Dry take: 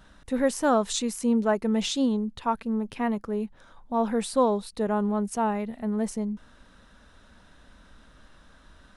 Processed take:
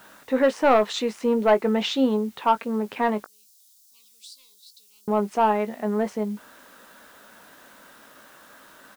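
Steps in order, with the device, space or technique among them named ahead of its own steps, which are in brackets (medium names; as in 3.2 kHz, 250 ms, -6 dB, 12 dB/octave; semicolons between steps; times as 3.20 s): tape answering machine (band-pass 350–2800 Hz; saturation -18.5 dBFS, distortion -14 dB; wow and flutter 28 cents; white noise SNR 32 dB); 3.24–5.08 s: inverse Chebyshev high-pass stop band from 1.8 kHz, stop band 50 dB; doubling 19 ms -11 dB; trim +8.5 dB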